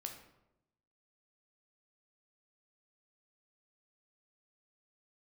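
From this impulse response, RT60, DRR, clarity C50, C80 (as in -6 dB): 0.90 s, 3.0 dB, 7.0 dB, 10.0 dB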